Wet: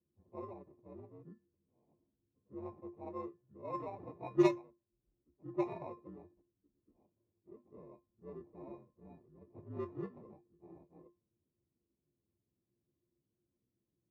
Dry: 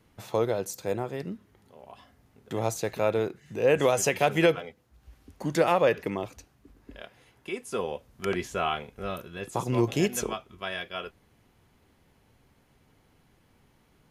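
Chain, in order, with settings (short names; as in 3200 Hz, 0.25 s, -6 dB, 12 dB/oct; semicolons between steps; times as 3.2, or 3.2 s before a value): inharmonic rescaling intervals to 123%; bell 2000 Hz -3 dB 2.3 oct; sample-and-hold 28×; HPF 110 Hz 12 dB/oct; low shelf 190 Hz +3.5 dB; resonator 350 Hz, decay 0.29 s, harmonics odd, mix 90%; low-pass opened by the level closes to 400 Hz, open at -26 dBFS; upward expander 2.5:1, over -38 dBFS; gain +10.5 dB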